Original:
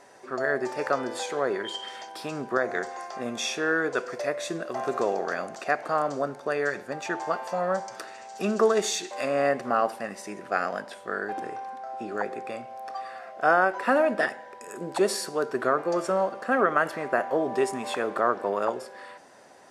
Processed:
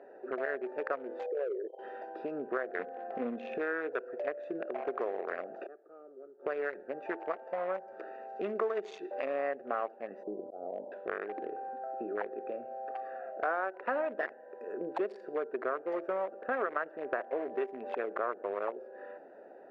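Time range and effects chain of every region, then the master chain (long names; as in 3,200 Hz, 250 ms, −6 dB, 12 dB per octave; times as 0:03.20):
0:01.26–0:01.79: spectral envelope exaggerated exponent 3 + low-pass filter 1,100 Hz
0:02.79–0:03.58: bass and treble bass +14 dB, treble −8 dB + comb filter 4 ms, depth 64%
0:05.66–0:06.46: gate with flip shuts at −29 dBFS, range −33 dB + hollow resonant body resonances 380/1,200 Hz, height 16 dB, ringing for 25 ms + saturating transformer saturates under 2,600 Hz
0:10.23–0:10.92: Butterworth low-pass 970 Hz 48 dB per octave + volume swells 360 ms
whole clip: adaptive Wiener filter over 41 samples; Chebyshev band-pass filter 400–2,200 Hz, order 2; downward compressor 3 to 1, threshold −44 dBFS; level +8 dB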